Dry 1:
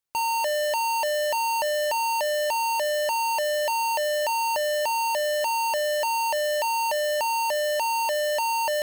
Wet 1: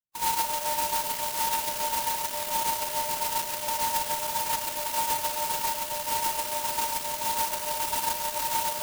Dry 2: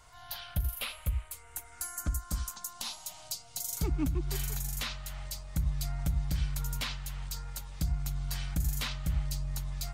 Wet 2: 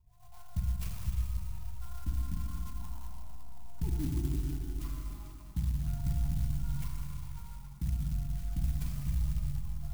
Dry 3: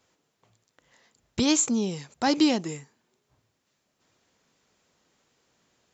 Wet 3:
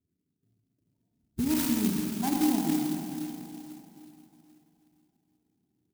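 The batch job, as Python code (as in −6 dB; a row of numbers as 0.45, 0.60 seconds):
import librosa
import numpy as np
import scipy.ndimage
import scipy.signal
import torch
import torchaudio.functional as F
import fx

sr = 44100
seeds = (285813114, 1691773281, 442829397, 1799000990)

y = fx.reverse_delay(x, sr, ms=233, wet_db=-12.5)
y = fx.hum_notches(y, sr, base_hz=50, count=3)
y = fx.env_lowpass(y, sr, base_hz=470.0, full_db=-25.5)
y = fx.spec_topn(y, sr, count=16)
y = fx.fixed_phaser(y, sr, hz=2600.0, stages=8)
y = fx.rotary(y, sr, hz=7.0)
y = fx.rev_schroeder(y, sr, rt60_s=3.3, comb_ms=33, drr_db=-1.5)
y = fx.clock_jitter(y, sr, seeds[0], jitter_ms=0.11)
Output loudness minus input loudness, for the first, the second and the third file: −3.0, −1.5, −3.5 LU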